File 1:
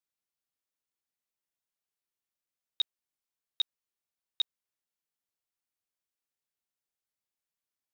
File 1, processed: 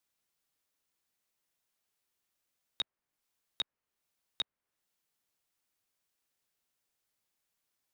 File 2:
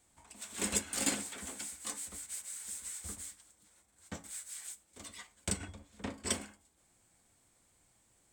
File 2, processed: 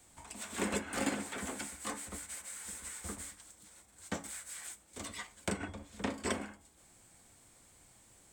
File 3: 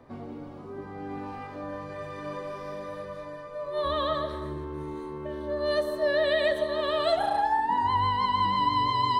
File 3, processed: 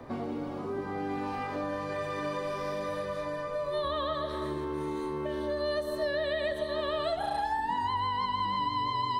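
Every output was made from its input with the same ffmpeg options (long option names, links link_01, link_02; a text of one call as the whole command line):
ffmpeg -i in.wav -filter_complex "[0:a]acrossover=split=190|2300[link_01][link_02][link_03];[link_01]acompressor=threshold=-55dB:ratio=4[link_04];[link_02]acompressor=threshold=-40dB:ratio=4[link_05];[link_03]acompressor=threshold=-53dB:ratio=4[link_06];[link_04][link_05][link_06]amix=inputs=3:normalize=0,volume=8dB" out.wav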